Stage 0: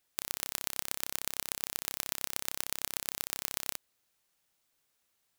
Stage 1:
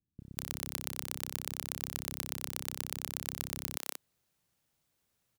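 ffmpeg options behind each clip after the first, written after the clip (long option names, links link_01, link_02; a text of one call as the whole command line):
ffmpeg -i in.wav -filter_complex "[0:a]equalizer=frequency=120:width=0.35:gain=14,acrossover=split=290[link_01][link_02];[link_02]adelay=200[link_03];[link_01][link_03]amix=inputs=2:normalize=0,volume=-3dB" out.wav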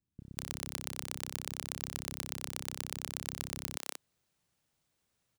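ffmpeg -i in.wav -af "equalizer=frequency=14000:width=2:gain=-11.5" out.wav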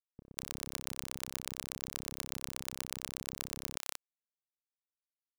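ffmpeg -i in.wav -af "aeval=exprs='sgn(val(0))*max(abs(val(0))-0.00531,0)':channel_layout=same" out.wav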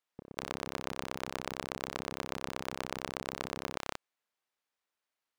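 ffmpeg -i in.wav -filter_complex "[0:a]asplit=2[link_01][link_02];[link_02]highpass=frequency=720:poles=1,volume=20dB,asoftclip=type=tanh:threshold=-8.5dB[link_03];[link_01][link_03]amix=inputs=2:normalize=0,lowpass=frequency=1800:poles=1,volume=-6dB,volume=1.5dB" out.wav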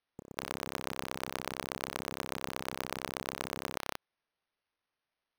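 ffmpeg -i in.wav -af "acrusher=samples=6:mix=1:aa=0.000001" out.wav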